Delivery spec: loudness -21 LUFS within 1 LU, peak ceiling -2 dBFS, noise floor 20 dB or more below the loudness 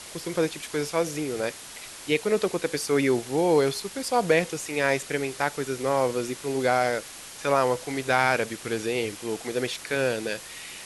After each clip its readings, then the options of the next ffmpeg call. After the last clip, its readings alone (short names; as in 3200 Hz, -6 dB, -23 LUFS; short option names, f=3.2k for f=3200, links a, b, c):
noise floor -42 dBFS; noise floor target -46 dBFS; loudness -26.0 LUFS; peak -6.5 dBFS; loudness target -21.0 LUFS
-> -af "afftdn=nr=6:nf=-42"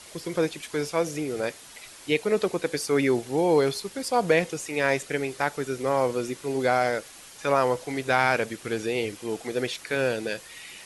noise floor -47 dBFS; loudness -26.5 LUFS; peak -6.5 dBFS; loudness target -21.0 LUFS
-> -af "volume=5.5dB,alimiter=limit=-2dB:level=0:latency=1"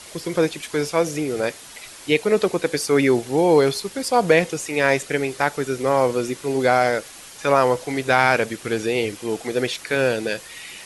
loudness -21.0 LUFS; peak -2.0 dBFS; noise floor -41 dBFS